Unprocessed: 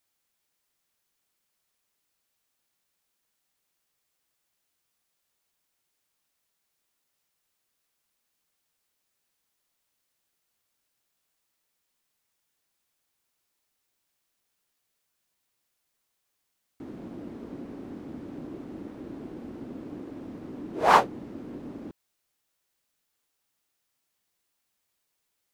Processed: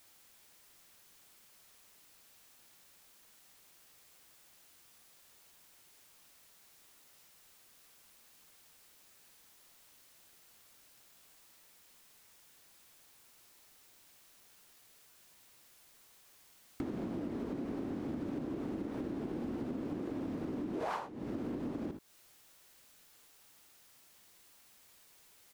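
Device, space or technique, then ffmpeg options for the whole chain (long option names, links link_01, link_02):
serial compression, leveller first: -af "aecho=1:1:59|78:0.224|0.133,acompressor=threshold=-38dB:ratio=2.5,acompressor=threshold=-53dB:ratio=5,volume=15.5dB"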